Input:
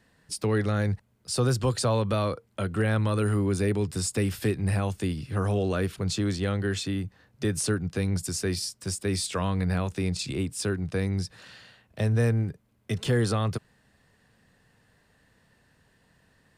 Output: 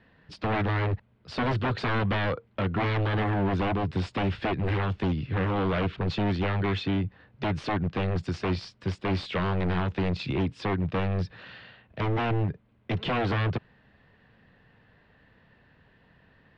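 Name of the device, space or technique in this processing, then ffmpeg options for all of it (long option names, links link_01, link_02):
synthesiser wavefolder: -af "aeval=exprs='0.0562*(abs(mod(val(0)/0.0562+3,4)-2)-1)':channel_layout=same,lowpass=frequency=3400:width=0.5412,lowpass=frequency=3400:width=1.3066,volume=4dB"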